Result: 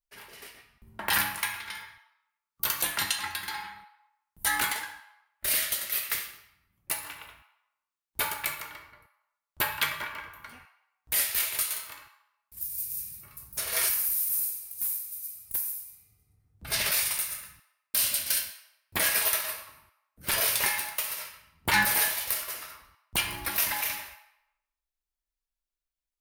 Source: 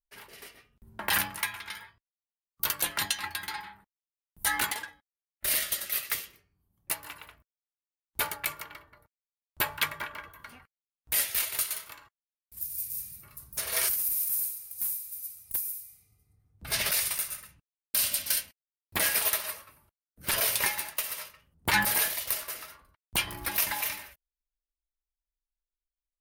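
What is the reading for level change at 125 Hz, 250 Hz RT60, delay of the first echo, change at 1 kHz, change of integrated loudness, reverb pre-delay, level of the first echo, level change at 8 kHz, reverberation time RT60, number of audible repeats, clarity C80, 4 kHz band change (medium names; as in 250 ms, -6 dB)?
0.0 dB, 0.90 s, no echo, +1.5 dB, +1.0 dB, 12 ms, no echo, +1.0 dB, 0.90 s, no echo, 10.5 dB, +1.5 dB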